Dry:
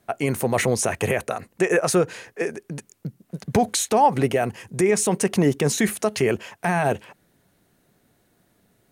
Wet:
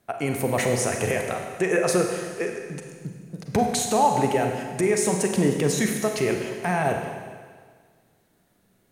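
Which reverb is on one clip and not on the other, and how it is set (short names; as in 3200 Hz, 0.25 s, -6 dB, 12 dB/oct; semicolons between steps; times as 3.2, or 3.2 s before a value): Schroeder reverb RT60 1.7 s, combs from 33 ms, DRR 3 dB; gain -3.5 dB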